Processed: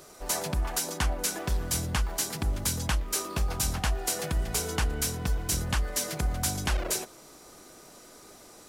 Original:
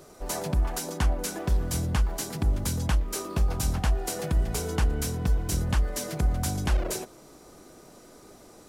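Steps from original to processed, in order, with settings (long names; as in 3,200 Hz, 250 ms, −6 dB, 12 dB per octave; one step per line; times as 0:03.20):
tilt shelving filter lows −4.5 dB, about 830 Hz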